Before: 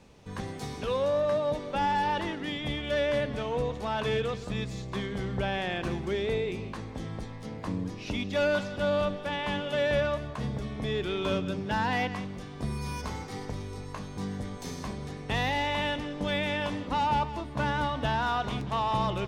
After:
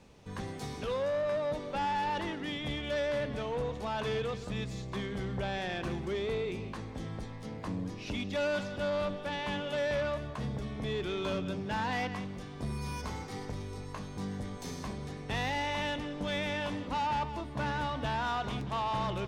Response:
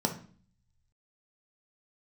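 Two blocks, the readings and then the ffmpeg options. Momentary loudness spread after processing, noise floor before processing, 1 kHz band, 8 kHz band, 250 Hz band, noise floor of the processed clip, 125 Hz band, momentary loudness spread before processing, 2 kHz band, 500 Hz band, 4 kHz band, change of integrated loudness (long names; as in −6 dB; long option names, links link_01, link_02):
8 LU, −41 dBFS, −4.5 dB, −2.0 dB, −4.0 dB, −43 dBFS, −4.0 dB, 11 LU, −4.5 dB, −4.5 dB, −4.0 dB, −4.0 dB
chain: -af "asoftclip=type=tanh:threshold=-25dB,volume=-2dB"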